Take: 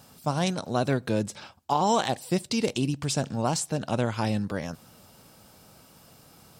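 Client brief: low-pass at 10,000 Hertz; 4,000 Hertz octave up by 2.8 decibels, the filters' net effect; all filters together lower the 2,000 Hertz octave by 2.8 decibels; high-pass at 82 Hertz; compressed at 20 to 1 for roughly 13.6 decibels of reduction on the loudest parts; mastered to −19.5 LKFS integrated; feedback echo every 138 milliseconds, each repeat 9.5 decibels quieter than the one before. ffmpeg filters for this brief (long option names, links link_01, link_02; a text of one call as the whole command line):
ffmpeg -i in.wav -af "highpass=82,lowpass=10000,equalizer=frequency=2000:width_type=o:gain=-5.5,equalizer=frequency=4000:width_type=o:gain=5,acompressor=threshold=-33dB:ratio=20,aecho=1:1:138|276|414|552:0.335|0.111|0.0365|0.012,volume=19dB" out.wav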